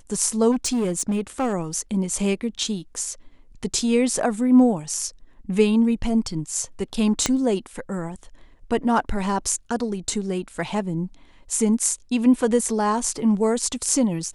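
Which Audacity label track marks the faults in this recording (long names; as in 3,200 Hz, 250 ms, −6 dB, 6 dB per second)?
0.510000	1.540000	clipping −18.5 dBFS
7.260000	7.260000	click −5 dBFS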